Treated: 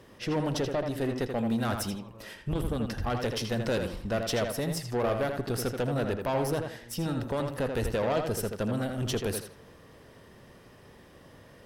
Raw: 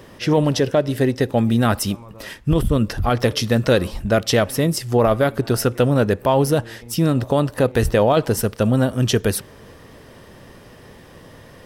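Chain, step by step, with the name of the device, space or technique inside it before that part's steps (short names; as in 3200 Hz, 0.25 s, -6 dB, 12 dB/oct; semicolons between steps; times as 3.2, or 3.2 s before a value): rockabilly slapback (tube stage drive 15 dB, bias 0.5; tape echo 82 ms, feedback 33%, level -4 dB, low-pass 3600 Hz); gain -8.5 dB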